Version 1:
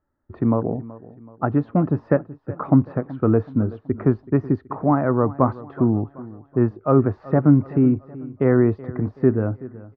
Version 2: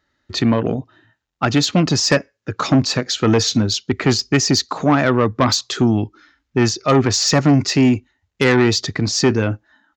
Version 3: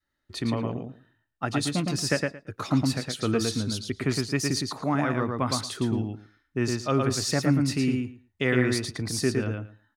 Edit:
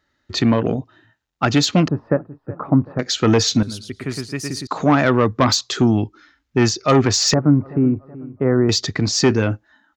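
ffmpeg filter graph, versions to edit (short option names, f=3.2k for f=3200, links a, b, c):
-filter_complex "[0:a]asplit=2[a][b];[1:a]asplit=4[c][d][e][f];[c]atrim=end=1.882[g];[a]atrim=start=1.878:end=2.992[h];[d]atrim=start=2.988:end=3.632[i];[2:a]atrim=start=3.628:end=4.672[j];[e]atrim=start=4.668:end=7.342[k];[b]atrim=start=7.338:end=8.692[l];[f]atrim=start=8.688[m];[g][h]acrossfade=d=0.004:c1=hsin:c2=hsin[n];[n][i]acrossfade=d=0.004:c1=hsin:c2=hsin[o];[o][j]acrossfade=d=0.004:c1=hsin:c2=hsin[p];[p][k]acrossfade=d=0.004:c1=hsin:c2=hsin[q];[q][l]acrossfade=d=0.004:c1=hsin:c2=hsin[r];[r][m]acrossfade=d=0.004:c1=hsin:c2=hsin"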